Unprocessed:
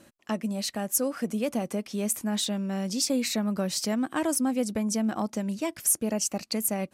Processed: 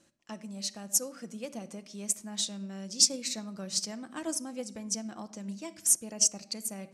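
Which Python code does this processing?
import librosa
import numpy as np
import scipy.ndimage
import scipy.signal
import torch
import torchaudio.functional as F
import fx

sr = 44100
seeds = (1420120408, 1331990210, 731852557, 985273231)

y = scipy.signal.sosfilt(scipy.signal.butter(2, 9800.0, 'lowpass', fs=sr, output='sos'), x)
y = fx.peak_eq(y, sr, hz=6300.0, db=9.0, octaves=1.4)
y = fx.room_shoebox(y, sr, seeds[0], volume_m3=2200.0, walls='furnished', distance_m=0.82)
y = fx.upward_expand(y, sr, threshold_db=-26.0, expansion=2.5)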